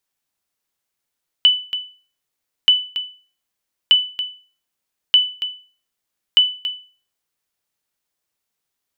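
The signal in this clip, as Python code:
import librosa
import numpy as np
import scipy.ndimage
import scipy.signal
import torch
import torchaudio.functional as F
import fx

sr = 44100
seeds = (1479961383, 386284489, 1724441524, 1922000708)

y = fx.sonar_ping(sr, hz=2990.0, decay_s=0.39, every_s=1.23, pings=5, echo_s=0.28, echo_db=-12.0, level_db=-4.5)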